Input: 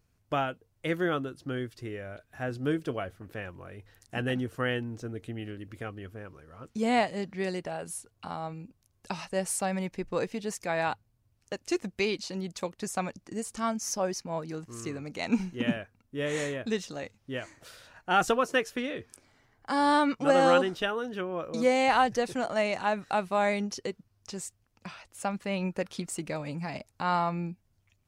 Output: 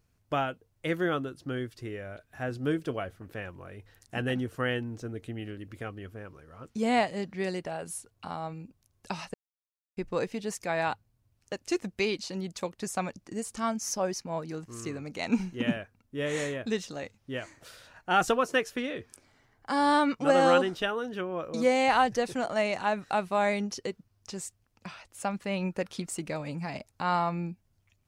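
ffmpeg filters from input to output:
-filter_complex "[0:a]asplit=3[a][b][c];[a]atrim=end=9.34,asetpts=PTS-STARTPTS,afade=t=out:st=9.336:d=0.004:c=hsin[d];[b]atrim=start=9.34:end=9.97,asetpts=PTS-STARTPTS,volume=0[e];[c]atrim=start=9.97,asetpts=PTS-STARTPTS,afade=t=in:d=0.004:c=hsin[f];[d][e][f]concat=n=3:v=0:a=1"

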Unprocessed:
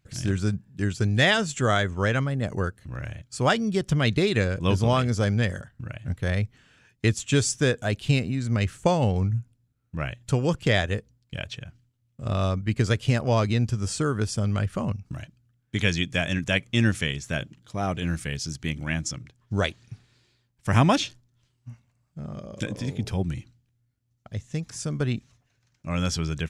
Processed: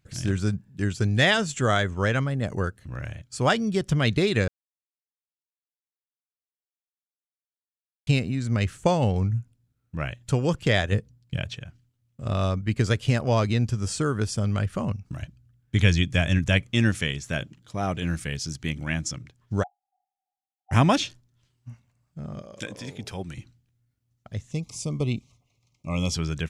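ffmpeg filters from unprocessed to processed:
-filter_complex "[0:a]asettb=1/sr,asplit=3[a][b][c];[a]atrim=end=10.924[d];[b]atrim=start=10.92:end=11.54,asetpts=PTS-STARTPTS,afade=t=in:d=0.004:c=qsin,afade=t=out:st=0.616:d=0.004:c=qsin,equalizer=f=130:t=o:w=1.7:g=7.5[e];[c]atrim=start=11.536[f];[d][e]acrossfade=d=0.004:c1=hsin:c2=qsin[g];[g][f]acrossfade=d=0.004:c1=qsin:c2=hsin,asettb=1/sr,asplit=3[h][i][j];[h]atrim=end=15.224[k];[i]atrim=start=15.22:end=16.67,asetpts=PTS-STARTPTS,afade=t=in:d=0.004:c=qsin,afade=t=out:st=1.446:d=0.004:c=qsin,equalizer=f=63:t=o:w=1.9:g=12[l];[j]atrim=start=16.666[m];[k][l]acrossfade=d=0.004:c1=hsin:c2=qsin[n];[n][m]acrossfade=d=0.004:c1=qsin:c2=hsin,asplit=3[o][p][q];[o]afade=t=out:st=19.62:d=0.02[r];[p]asuperpass=centerf=770:order=12:qfactor=7,afade=t=in:st=19.62:d=0.02,afade=t=out:st=20.71:d=0.02[s];[q]afade=t=in:st=20.71:d=0.02[t];[r][s][t]amix=inputs=3:normalize=0,asettb=1/sr,asplit=3[u][v][w];[u]atrim=end=22.424[x];[v]atrim=start=22.42:end=23.38,asetpts=PTS-STARTPTS,afade=t=in:d=0.004:c=qsin,afade=t=out:st=0.956:d=0.004:c=qsin,lowshelf=f=310:g=-11.5[y];[w]atrim=start=23.376[z];[x][y]acrossfade=d=0.004:c1=hsin:c2=qsin[aa];[aa][z]acrossfade=d=0.004:c1=qsin:c2=hsin,asettb=1/sr,asplit=3[ab][ac][ad];[ab]atrim=end=24.514[ae];[ac]atrim=start=24.51:end=26.15,asetpts=PTS-STARTPTS,afade=t=in:d=0.004:c=qsin,afade=t=out:st=1.636:d=0.004:c=qsin,asuperstop=centerf=1600:order=12:qfactor=2[af];[ad]atrim=start=26.146[ag];[ae][af]acrossfade=d=0.004:c1=hsin:c2=qsin[ah];[ah][ag]acrossfade=d=0.004:c1=qsin:c2=hsin,asplit=3[ai][aj][ak];[ai]atrim=end=4.48,asetpts=PTS-STARTPTS,afade=t=out:st=4.476:d=0.004:c=hsin[al];[aj]atrim=start=4.48:end=8.07,asetpts=PTS-STARTPTS,volume=0[am];[ak]atrim=start=8.07,asetpts=PTS-STARTPTS,afade=t=in:d=0.004:c=hsin[an];[al][am][an]concat=n=3:v=0:a=1"

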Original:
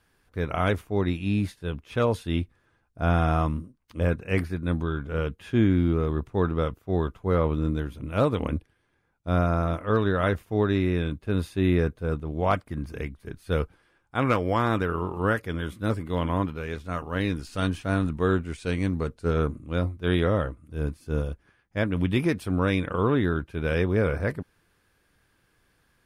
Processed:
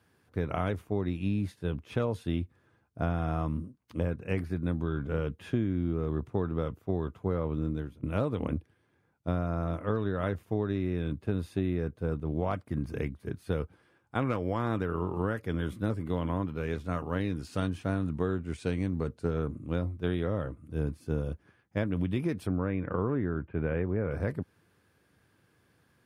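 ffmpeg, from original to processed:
-filter_complex "[0:a]asettb=1/sr,asplit=3[a][b][c];[a]atrim=end=22.474[d];[b]atrim=start=22.47:end=24.11,asetpts=PTS-STARTPTS,afade=t=in:d=0.004:c=qsin,afade=t=out:st=1.636:d=0.004:c=qsin,lowpass=f=2.3k:w=0.5412,lowpass=f=2.3k:w=1.3066[e];[c]atrim=start=24.106[f];[d][e]acrossfade=d=0.004:c1=hsin:c2=qsin[g];[g][f]acrossfade=d=0.004:c1=qsin:c2=hsin,asplit=2[h][i];[h]atrim=end=8.03,asetpts=PTS-STARTPTS,afade=t=out:st=7.48:d=0.55:silence=0.125893[j];[i]atrim=start=8.03,asetpts=PTS-STARTPTS,afade=t=in:d=0.004:c=hsin:silence=0.125893[k];[j][k]concat=n=2:v=0:a=1,highpass=f=80:w=0.5412,highpass=f=80:w=1.3066,tiltshelf=f=750:g=3.5,acompressor=threshold=-26dB:ratio=6"

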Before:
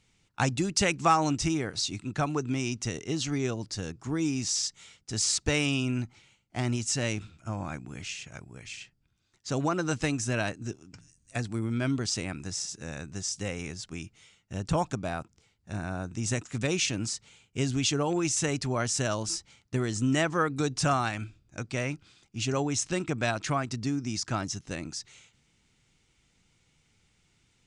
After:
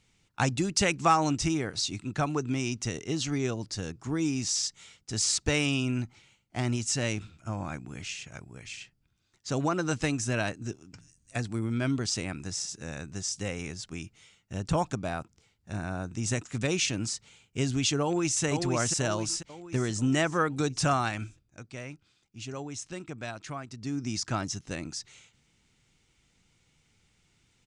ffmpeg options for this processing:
-filter_complex "[0:a]asplit=2[a][b];[b]afade=t=in:st=18.02:d=0.01,afade=t=out:st=18.44:d=0.01,aecho=0:1:490|980|1470|1960|2450|2940:0.562341|0.281171|0.140585|0.0702927|0.0351463|0.0175732[c];[a][c]amix=inputs=2:normalize=0,asplit=3[d][e][f];[d]atrim=end=21.51,asetpts=PTS-STARTPTS,afade=t=out:st=21.26:d=0.25:silence=0.334965[g];[e]atrim=start=21.51:end=23.78,asetpts=PTS-STARTPTS,volume=-9.5dB[h];[f]atrim=start=23.78,asetpts=PTS-STARTPTS,afade=t=in:d=0.25:silence=0.334965[i];[g][h][i]concat=n=3:v=0:a=1"

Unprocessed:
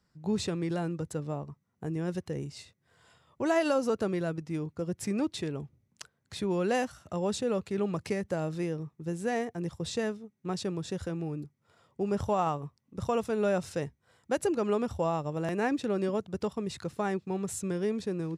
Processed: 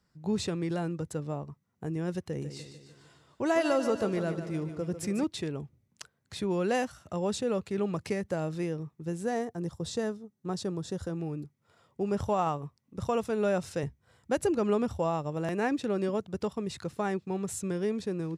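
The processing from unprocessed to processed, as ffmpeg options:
-filter_complex "[0:a]asettb=1/sr,asplit=3[a][b][c];[a]atrim=end=2.194[d];[b]atrim=start=2.19:end=5.24,asetpts=PTS-STARTPTS,afade=t=in:d=0.004:c=qsin,afade=t=out:st=3.046:d=0.004:c=qsin,aecho=1:1:148|296|444|592|740|888:0.316|0.177|0.0992|0.0555|0.0311|0.0174,atrim=end_sample=134505[e];[c]atrim=start=5.236[f];[d][e]acrossfade=d=0.004:c1=hsin:c2=qsin[g];[g][f]acrossfade=d=0.004:c1=qsin:c2=hsin,asettb=1/sr,asplit=3[h][i][j];[h]atrim=end=9.234[k];[i]atrim=start=9.23:end=11.17,asetpts=PTS-STARTPTS,afade=t=in:d=0.004:c=qsin,afade=t=out:st=1.936:d=0.004:c=qsin,equalizer=f=2.4k:t=o:w=0.75:g=-9[l];[j]atrim=start=11.166[m];[k][l]acrossfade=d=0.004:c1=hsin:c2=qsin[n];[n][m]acrossfade=d=0.004:c1=qsin:c2=hsin,asettb=1/sr,asplit=3[o][p][q];[o]atrim=end=13.834[r];[p]atrim=start=13.83:end=14.91,asetpts=PTS-STARTPTS,afade=t=in:d=0.004:c=qsin,afade=t=out:st=1.076:d=0.004:c=qsin,lowshelf=f=130:g=10.5[s];[q]atrim=start=14.906[t];[r][s]acrossfade=d=0.004:c1=hsin:c2=qsin[u];[u][t]acrossfade=d=0.004:c1=qsin:c2=hsin"

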